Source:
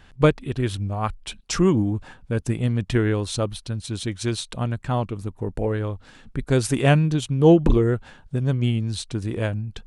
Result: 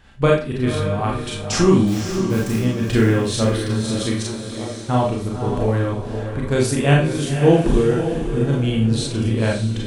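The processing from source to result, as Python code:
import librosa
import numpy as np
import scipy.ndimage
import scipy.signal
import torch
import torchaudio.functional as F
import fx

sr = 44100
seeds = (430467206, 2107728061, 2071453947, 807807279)

y = fx.rider(x, sr, range_db=3, speed_s=2.0)
y = fx.quant_dither(y, sr, seeds[0], bits=6, dither='none', at=(1.87, 2.59))
y = fx.bandpass_q(y, sr, hz=fx.line((4.22, 890.0), (4.88, 290.0)), q=2.2, at=(4.22, 4.88), fade=0.02)
y = fx.echo_diffused(y, sr, ms=536, feedback_pct=43, wet_db=-7.5)
y = fx.rev_schroeder(y, sr, rt60_s=0.34, comb_ms=28, drr_db=-2.5)
y = y * 10.0 ** (-1.0 / 20.0)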